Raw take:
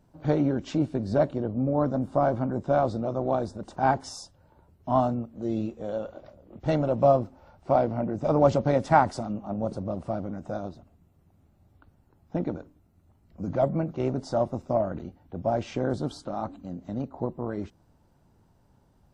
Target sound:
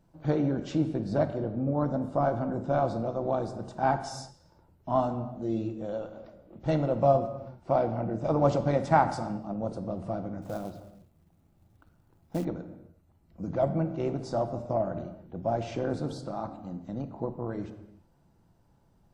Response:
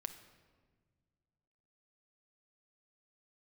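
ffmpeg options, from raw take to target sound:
-filter_complex "[1:a]atrim=start_sample=2205,afade=t=out:st=0.43:d=0.01,atrim=end_sample=19404[a];[0:a][a]afir=irnorm=-1:irlink=0,asettb=1/sr,asplit=3[b][c][d];[b]atrim=end=10.424[e];[c]atrim=start=10.42:end=12.45,asetpts=PTS-STARTPTS,afade=t=in:d=0.004:c=qsin,afade=t=out:st=2.026:d=0.004:c=qsin,acrusher=bits=5:mode=log:mix=0:aa=0.000001[f];[d]atrim=start=12.446[g];[e][f]acrossfade=d=0.004:c1=hsin:c2=qsin[h];[h][g]acrossfade=d=0.004:c1=qsin:c2=hsin,asettb=1/sr,asplit=3[i][j][k];[i]atrim=end=15.884[l];[j]atrim=start=15.88:end=16.57,asetpts=PTS-STARTPTS,afade=t=in:d=0.004:c=qsin,afade=t=out:st=0.686:d=0.004:c=qsin,bandreject=f=3.1k:w=10[m];[k]atrim=start=16.566[n];[l][m]acrossfade=d=0.004:c1=hsin:c2=qsin[o];[o][n]acrossfade=d=0.004:c1=qsin:c2=hsin"

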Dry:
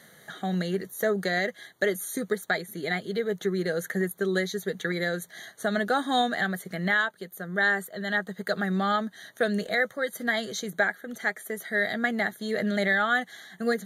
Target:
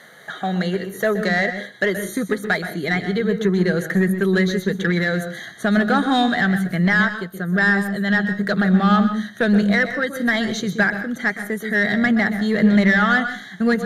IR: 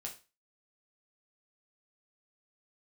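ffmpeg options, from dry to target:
-filter_complex "[0:a]asubboost=boost=7:cutoff=210,asplit=2[a][b];[b]highpass=f=720:p=1,volume=14dB,asoftclip=type=tanh:threshold=-10dB[c];[a][c]amix=inputs=2:normalize=0,lowpass=f=2.1k:p=1,volume=-6dB,asplit=2[d][e];[1:a]atrim=start_sample=2205,lowshelf=f=370:g=8.5,adelay=125[f];[e][f]afir=irnorm=-1:irlink=0,volume=-8dB[g];[d][g]amix=inputs=2:normalize=0,volume=3.5dB"

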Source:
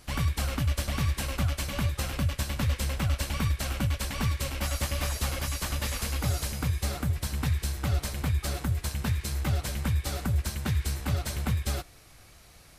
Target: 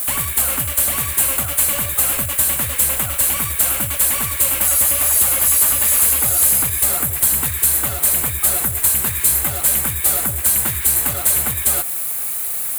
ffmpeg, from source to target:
-filter_complex "[0:a]asplit=2[a][b];[b]highpass=f=720:p=1,volume=22dB,asoftclip=type=tanh:threshold=-17.5dB[c];[a][c]amix=inputs=2:normalize=0,lowpass=f=3.7k:p=1,volume=-6dB,acrusher=bits=7:mix=0:aa=0.000001,acompressor=threshold=-28dB:ratio=6,aexciter=amount=14.3:drive=5.8:freq=7.9k,volume=4dB"

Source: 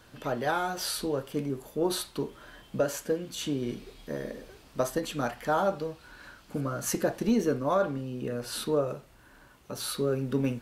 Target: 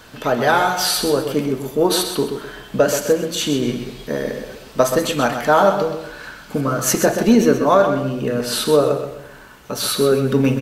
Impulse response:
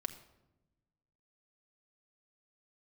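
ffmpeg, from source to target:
-filter_complex "[0:a]equalizer=f=10k:w=4.3:g=-4,aecho=1:1:128|256|384|512:0.376|0.124|0.0409|0.0135,asplit=2[a][b];[1:a]atrim=start_sample=2205,lowshelf=f=260:g=-10[c];[b][c]afir=irnorm=-1:irlink=0,volume=4.5dB[d];[a][d]amix=inputs=2:normalize=0,volume=6dB"

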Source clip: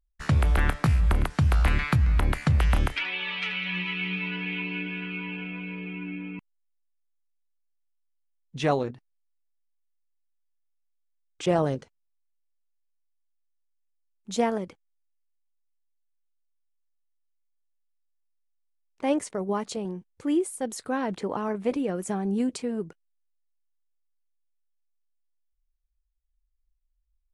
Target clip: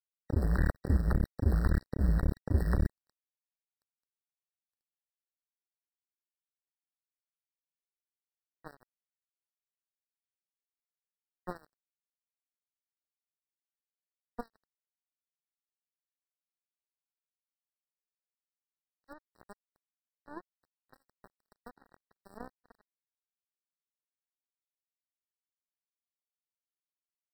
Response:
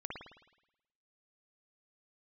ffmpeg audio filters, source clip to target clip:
-filter_complex "[0:a]aeval=exprs='val(0)+0.5*0.0562*sgn(val(0))':c=same,equalizer=f=140:t=o:w=0.34:g=-12.5,acrossover=split=180|1100[a][b][c];[c]aexciter=amount=6.6:drive=4.5:freq=4.1k[d];[a][b][d]amix=inputs=3:normalize=0,firequalizer=gain_entry='entry(200,0);entry(860,-14);entry(2300,-6);entry(3600,-27);entry(10000,-29)':delay=0.05:min_phase=1,asplit=2[e][f];[f]aecho=0:1:263|526|789|1052|1315:0.2|0.102|0.0519|0.0265|0.0135[g];[e][g]amix=inputs=2:normalize=0,acrusher=bits=2:mix=0:aa=0.5,afftfilt=real='re*eq(mod(floor(b*sr/1024/1900),2),0)':imag='im*eq(mod(floor(b*sr/1024/1900),2),0)':win_size=1024:overlap=0.75,volume=-6.5dB"

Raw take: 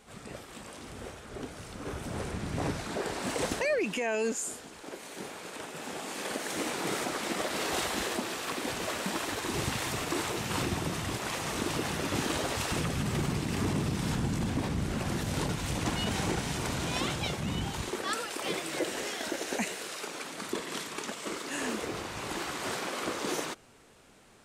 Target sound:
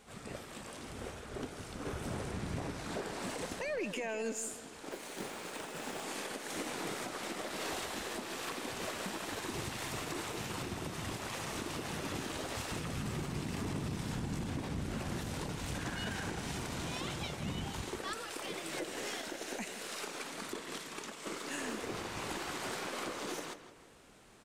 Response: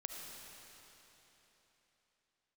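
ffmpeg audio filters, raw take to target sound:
-filter_complex "[0:a]asettb=1/sr,asplit=3[a][b][c];[a]atrim=end=15.744[d];[b]atrim=start=15.74:end=16.3,asetpts=PTS-STARTPTS,afade=t=in:d=0.004:c=qsin,afade=t=out:st=0.556:d=0.004:c=qsin,equalizer=f=1.6k:w=5.7:g=12[e];[c]atrim=start=16.296[f];[d][e]acrossfade=d=0.004:c1=hsin:c2=qsin[g];[g][f]acrossfade=d=0.004:c1=qsin:c2=hsin,alimiter=level_in=4dB:limit=-24dB:level=0:latency=1:release=437,volume=-4dB,asplit=2[h][i];[i]adelay=163,lowpass=f=4.2k:p=1,volume=-11dB,asplit=2[j][k];[k]adelay=163,lowpass=f=4.2k:p=1,volume=0.44,asplit=2[l][m];[m]adelay=163,lowpass=f=4.2k:p=1,volume=0.44,asplit=2[n][o];[o]adelay=163,lowpass=f=4.2k:p=1,volume=0.44,asplit=2[p][q];[q]adelay=163,lowpass=f=4.2k:p=1,volume=0.44[r];[j][l][n][p][r]amix=inputs=5:normalize=0[s];[h][s]amix=inputs=2:normalize=0,asettb=1/sr,asplit=3[t][u][v];[t]atrim=end=4.914[w];[u]atrim=start=4.91:end=6.03,asetpts=PTS-STARTPTS,afade=t=in:d=0.004:c=qsin,afade=t=out:st=1.116:d=0.004:c=qsin,acrusher=bits=4:mode=log:mix=0:aa=0.000001[x];[v]atrim=start=6.026[y];[w][x]acrossfade=d=0.004:c1=hsin:c2=qsin[z];[z][y]acrossfade=d=0.004:c1=qsin:c2=hsin,aeval=exprs='0.0473*(cos(1*acos(clip(val(0)/0.0473,-1,1)))-cos(1*PI/2))+0.00106*(cos(6*acos(clip(val(0)/0.0473,-1,1)))-cos(6*PI/2))+0.00075*(cos(7*acos(clip(val(0)/0.0473,-1,1)))-cos(7*PI/2))':c=same,volume=-1dB"

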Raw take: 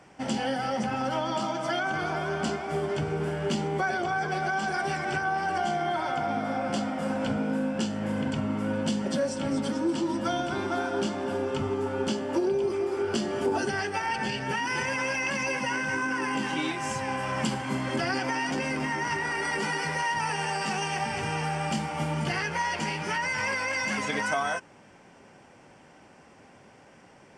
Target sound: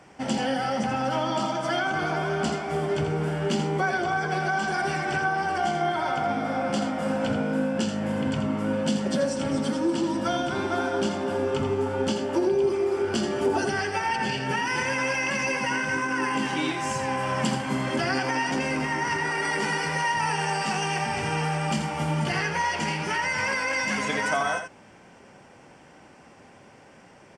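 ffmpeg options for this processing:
-af "aecho=1:1:83:0.398,volume=2dB"

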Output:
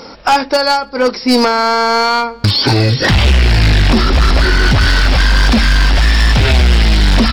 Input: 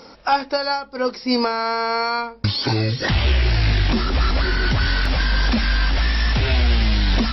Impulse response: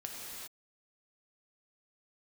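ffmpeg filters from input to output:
-filter_complex "[0:a]acontrast=49,volume=10.5dB,asoftclip=hard,volume=-10.5dB,asplit=2[a][b];[b]adelay=279.9,volume=-27dB,highshelf=f=4k:g=-6.3[c];[a][c]amix=inputs=2:normalize=0,volume=4.5dB"

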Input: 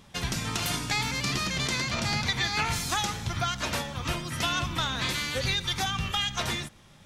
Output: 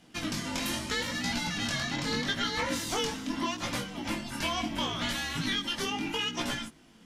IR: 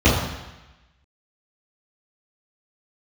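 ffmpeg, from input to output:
-af "afreqshift=-370,flanger=delay=16:depth=7.4:speed=0.77"

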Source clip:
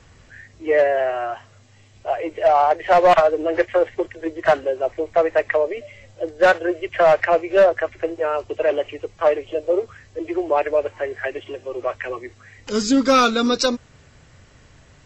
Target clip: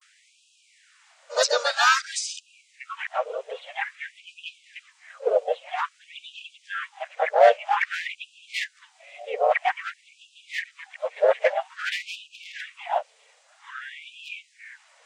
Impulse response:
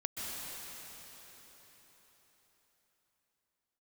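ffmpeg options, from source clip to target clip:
-filter_complex "[0:a]areverse,asplit=3[a][b][c];[b]asetrate=52444,aresample=44100,atempo=0.840896,volume=-2dB[d];[c]asetrate=55563,aresample=44100,atempo=0.793701,volume=-7dB[e];[a][d][e]amix=inputs=3:normalize=0,afftfilt=real='re*gte(b*sr/1024,400*pow(2500/400,0.5+0.5*sin(2*PI*0.51*pts/sr)))':imag='im*gte(b*sr/1024,400*pow(2500/400,0.5+0.5*sin(2*PI*0.51*pts/sr)))':win_size=1024:overlap=0.75,volume=-4dB"

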